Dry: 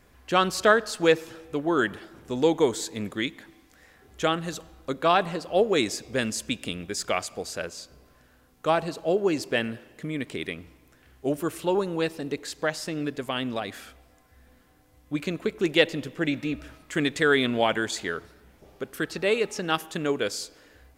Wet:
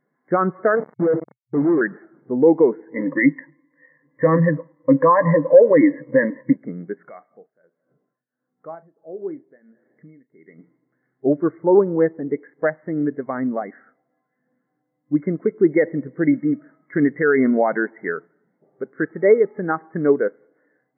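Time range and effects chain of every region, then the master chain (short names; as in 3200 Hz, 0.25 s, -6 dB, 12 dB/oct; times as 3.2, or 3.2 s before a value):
0.75–1.81 median filter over 41 samples + companded quantiser 2-bit + LPF 1100 Hz 6 dB/oct
2.94–6.56 ripple EQ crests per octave 1.1, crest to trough 18 dB + sample leveller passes 1 + doubler 14 ms -13 dB
7.09–10.59 compressor 1.5:1, threshold -51 dBFS + tremolo triangle 1.5 Hz, depth 85% + doubler 37 ms -13 dB
whole clip: FFT band-pass 120–2200 Hz; maximiser +15 dB; spectral expander 1.5:1; gain -1 dB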